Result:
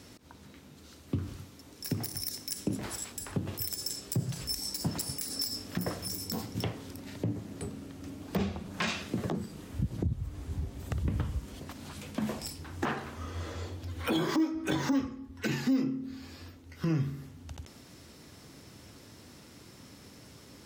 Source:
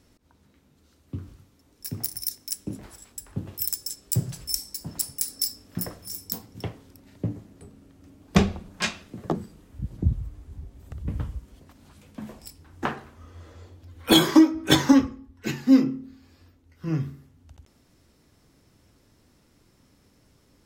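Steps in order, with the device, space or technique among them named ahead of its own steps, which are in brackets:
broadcast voice chain (high-pass filter 79 Hz; de-essing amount 95%; downward compressor 3 to 1, threshold −37 dBFS, peak gain reduction 18.5 dB; parametric band 4,200 Hz +3 dB 2.4 octaves; brickwall limiter −29.5 dBFS, peak gain reduction 11 dB)
level +9 dB

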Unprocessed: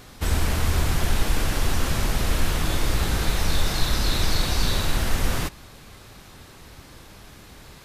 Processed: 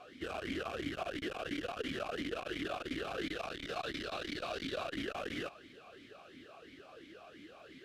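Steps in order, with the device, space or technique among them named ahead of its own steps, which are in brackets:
talk box (tube saturation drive 23 dB, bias 0.3; formant filter swept between two vowels a-i 2.9 Hz)
level +6.5 dB

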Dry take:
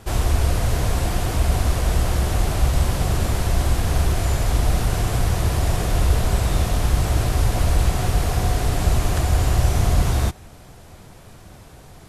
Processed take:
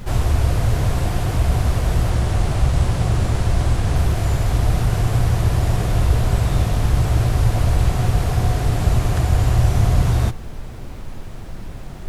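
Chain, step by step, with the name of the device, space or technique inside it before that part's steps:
0:02.10–0:03.96: low-pass filter 11,000 Hz 24 dB per octave
car interior (parametric band 120 Hz +7 dB 0.67 octaves; high-shelf EQ 4,300 Hz −5 dB; brown noise bed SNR 13 dB)

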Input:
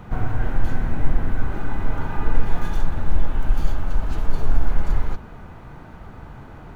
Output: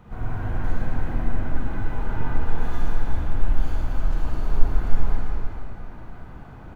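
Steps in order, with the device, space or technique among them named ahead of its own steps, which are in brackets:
cave (single-tap delay 321 ms −9 dB; convolution reverb RT60 2.6 s, pre-delay 40 ms, DRR −5.5 dB)
level −10 dB

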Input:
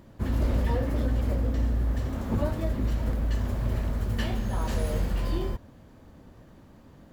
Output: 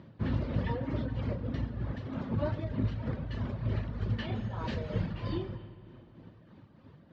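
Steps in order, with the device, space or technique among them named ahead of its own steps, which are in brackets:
reverb reduction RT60 1.1 s
low-pass filter 6,800 Hz 12 dB per octave
combo amplifier with spring reverb and tremolo (spring reverb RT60 3 s, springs 38 ms, chirp 40 ms, DRR 13.5 dB; amplitude tremolo 3.2 Hz, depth 48%; loudspeaker in its box 88–4,300 Hz, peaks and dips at 110 Hz +6 dB, 160 Hz +6 dB, 740 Hz −3 dB)
high-shelf EQ 7,100 Hz +5 dB
feedback echo with a low-pass in the loop 134 ms, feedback 72%, low-pass 4,900 Hz, level −18 dB

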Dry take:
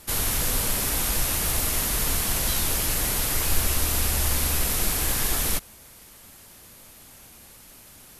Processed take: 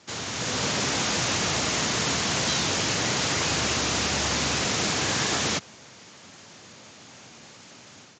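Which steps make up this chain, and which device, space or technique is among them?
Bluetooth headset (high-pass filter 110 Hz 24 dB per octave; automatic gain control gain up to 8 dB; downsampling to 16,000 Hz; level −3 dB; SBC 64 kbit/s 16,000 Hz)

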